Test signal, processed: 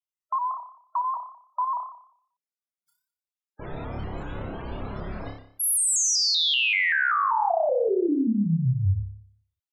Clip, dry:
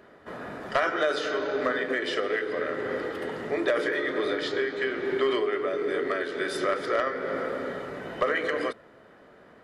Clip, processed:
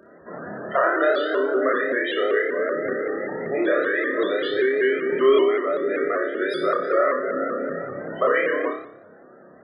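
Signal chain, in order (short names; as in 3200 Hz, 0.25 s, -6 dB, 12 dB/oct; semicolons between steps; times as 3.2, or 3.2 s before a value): loudest bins only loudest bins 32; flutter echo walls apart 5.1 m, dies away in 0.61 s; shaped vibrato saw up 5.2 Hz, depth 100 cents; gain +3 dB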